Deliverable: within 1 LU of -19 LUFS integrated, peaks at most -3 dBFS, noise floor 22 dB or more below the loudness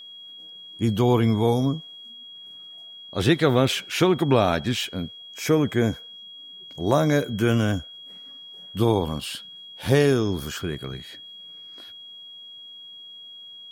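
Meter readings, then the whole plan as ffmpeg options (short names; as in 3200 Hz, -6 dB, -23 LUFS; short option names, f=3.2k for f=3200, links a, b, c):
steady tone 3300 Hz; tone level -40 dBFS; loudness -23.0 LUFS; peak -5.5 dBFS; loudness target -19.0 LUFS
-> -af "bandreject=f=3.3k:w=30"
-af "volume=4dB,alimiter=limit=-3dB:level=0:latency=1"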